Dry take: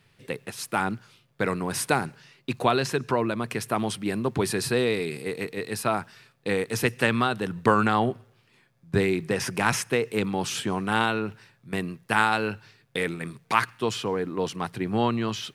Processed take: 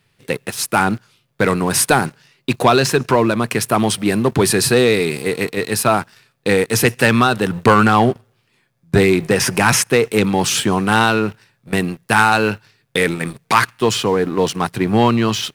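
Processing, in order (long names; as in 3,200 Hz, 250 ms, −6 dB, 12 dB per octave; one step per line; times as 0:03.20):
high-shelf EQ 6,000 Hz +4.5 dB
leveller curve on the samples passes 2
level +3.5 dB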